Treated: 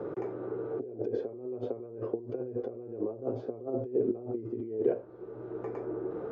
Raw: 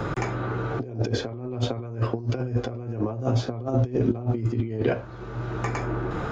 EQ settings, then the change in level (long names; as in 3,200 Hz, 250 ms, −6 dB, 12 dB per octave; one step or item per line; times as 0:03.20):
resonant band-pass 420 Hz, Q 3.2
0.0 dB